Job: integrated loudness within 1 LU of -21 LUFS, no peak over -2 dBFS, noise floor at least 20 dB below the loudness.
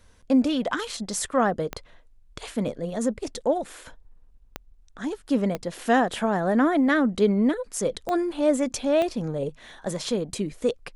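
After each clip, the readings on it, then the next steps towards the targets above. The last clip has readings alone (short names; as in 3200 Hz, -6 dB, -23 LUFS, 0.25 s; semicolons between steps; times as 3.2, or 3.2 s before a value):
clicks 5; loudness -25.5 LUFS; peak -8.0 dBFS; loudness target -21.0 LUFS
-> de-click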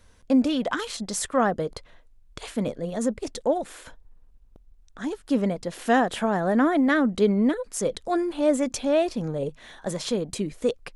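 clicks 0; loudness -25.5 LUFS; peak -8.0 dBFS; loudness target -21.0 LUFS
-> gain +4.5 dB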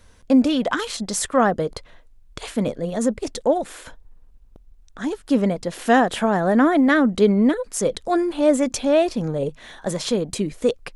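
loudness -21.0 LUFS; peak -3.5 dBFS; noise floor -51 dBFS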